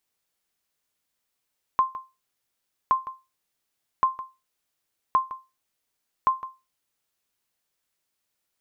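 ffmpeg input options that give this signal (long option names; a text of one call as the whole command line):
ffmpeg -f lavfi -i "aevalsrc='0.251*(sin(2*PI*1050*mod(t,1.12))*exp(-6.91*mod(t,1.12)/0.25)+0.168*sin(2*PI*1050*max(mod(t,1.12)-0.16,0))*exp(-6.91*max(mod(t,1.12)-0.16,0)/0.25))':duration=5.6:sample_rate=44100" out.wav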